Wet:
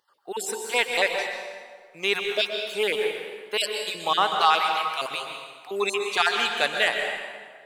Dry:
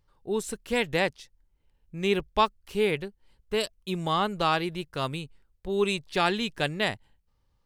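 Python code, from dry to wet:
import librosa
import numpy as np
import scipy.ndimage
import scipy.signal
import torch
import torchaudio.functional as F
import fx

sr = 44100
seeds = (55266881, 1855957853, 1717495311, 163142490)

p1 = fx.spec_dropout(x, sr, seeds[0], share_pct=34)
p2 = scipy.signal.sosfilt(scipy.signal.butter(2, 660.0, 'highpass', fs=sr, output='sos'), p1)
p3 = 10.0 ** (-21.5 / 20.0) * np.tanh(p2 / 10.0 ** (-21.5 / 20.0))
p4 = p2 + (p3 * 10.0 ** (-6.0 / 20.0))
p5 = fx.rev_plate(p4, sr, seeds[1], rt60_s=1.7, hf_ratio=0.7, predelay_ms=110, drr_db=3.0)
y = p5 * 10.0 ** (4.0 / 20.0)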